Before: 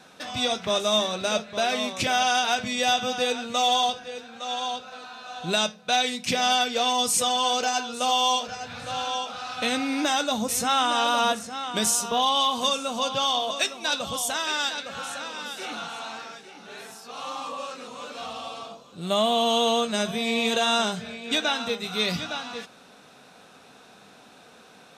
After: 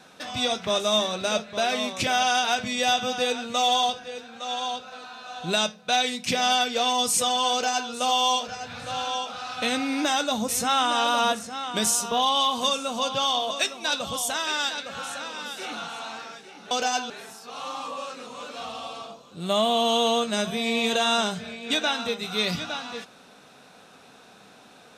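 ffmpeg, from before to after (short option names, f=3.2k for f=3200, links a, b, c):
-filter_complex "[0:a]asplit=3[a][b][c];[a]atrim=end=16.712[d];[b]atrim=start=7.518:end=7.912[e];[c]atrim=start=16.708[f];[d][e]acrossfade=d=0.004:c1=hsin:c2=hsin[g];[g][f]acrossfade=d=0.004:c1=hsin:c2=hsin"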